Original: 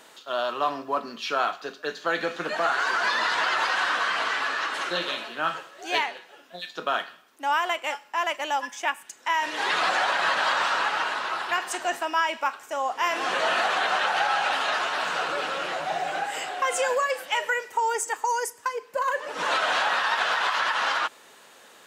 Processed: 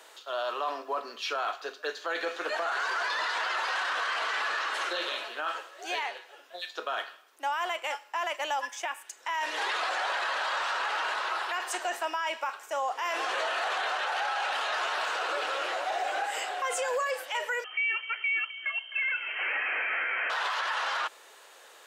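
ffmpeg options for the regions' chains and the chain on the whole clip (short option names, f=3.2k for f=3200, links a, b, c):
-filter_complex "[0:a]asettb=1/sr,asplit=3[a][b][c];[a]atrim=end=17.644[d];[b]atrim=start=17.64:end=20.3,asetpts=PTS-STARTPTS,afade=t=in:d=0.004:c=qsin,afade=t=out:st=2.656:d=0.004:c=qsin,aeval=exprs='val(0)+0.00708*(sin(2*PI*60*n/s)+sin(2*PI*2*60*n/s)/2+sin(2*PI*3*60*n/s)/3+sin(2*PI*4*60*n/s)/4+sin(2*PI*5*60*n/s)/5)':c=same,aecho=1:1:259:0.133,atrim=end_sample=117306,lowpass=f=2.7k:t=q:w=0.5098,lowpass=f=2.7k:t=q:w=0.6013,lowpass=f=2.7k:t=q:w=0.9,lowpass=f=2.7k:t=q:w=2.563,afreqshift=-3200[e];[c]atrim=start=20.296[f];[d][e]acrossfade=d=0.004:c1=hsin:c2=qsin[g];[g][f]acrossfade=d=0.004:c1=qsin:c2=hsin,highpass=f=370:w=0.5412,highpass=f=370:w=1.3066,alimiter=limit=-21dB:level=0:latency=1:release=11,volume=-1.5dB"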